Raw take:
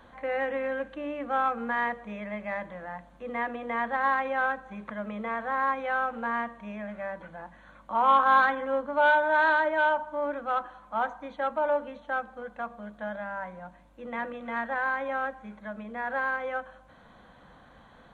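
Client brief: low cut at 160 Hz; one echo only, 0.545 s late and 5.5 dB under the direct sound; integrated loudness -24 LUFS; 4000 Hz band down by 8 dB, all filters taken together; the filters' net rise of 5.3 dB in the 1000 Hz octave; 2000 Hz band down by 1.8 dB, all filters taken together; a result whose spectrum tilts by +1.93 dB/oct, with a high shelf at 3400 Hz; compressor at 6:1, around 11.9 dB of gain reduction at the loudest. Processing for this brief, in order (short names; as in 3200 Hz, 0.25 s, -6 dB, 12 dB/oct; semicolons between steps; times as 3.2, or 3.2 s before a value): HPF 160 Hz; bell 1000 Hz +8 dB; bell 2000 Hz -4.5 dB; high shelf 3400 Hz -7 dB; bell 4000 Hz -5 dB; compressor 6:1, threshold -24 dBFS; echo 0.545 s -5.5 dB; gain +6 dB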